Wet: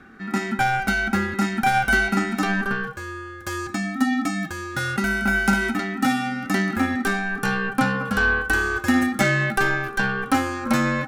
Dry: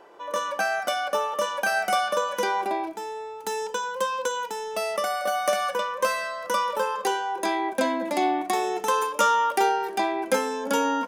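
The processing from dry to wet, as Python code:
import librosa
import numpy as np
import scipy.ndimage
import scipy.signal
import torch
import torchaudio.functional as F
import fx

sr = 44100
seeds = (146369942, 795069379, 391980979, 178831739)

y = fx.tube_stage(x, sr, drive_db=15.0, bias=0.6)
y = y * np.sin(2.0 * np.pi * 790.0 * np.arange(len(y)) / sr)
y = fx.small_body(y, sr, hz=(230.0, 790.0, 1500.0), ring_ms=50, db=13)
y = y * 10.0 ** (5.0 / 20.0)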